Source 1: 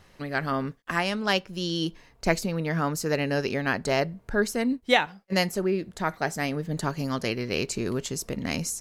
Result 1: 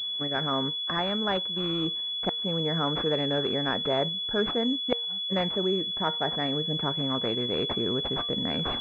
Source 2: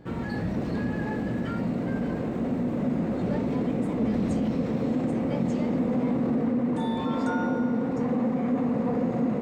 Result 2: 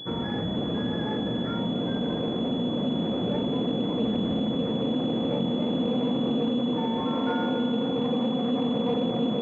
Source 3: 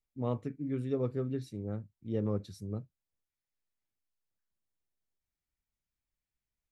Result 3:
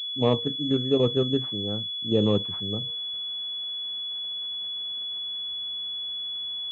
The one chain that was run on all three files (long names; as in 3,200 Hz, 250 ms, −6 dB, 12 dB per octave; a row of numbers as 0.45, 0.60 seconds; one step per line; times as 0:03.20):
in parallel at +2 dB: output level in coarse steps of 17 dB
on the sum: gate with flip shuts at −7 dBFS, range −35 dB
high-pass filter 150 Hz 6 dB per octave
tuned comb filter 470 Hz, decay 0.31 s, harmonics all, mix 60%
reversed playback
upward compression, threshold −50 dBFS
reversed playback
switching amplifier with a slow clock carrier 3,400 Hz
loudness normalisation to −27 LKFS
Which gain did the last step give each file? +3.5, +5.0, +14.0 decibels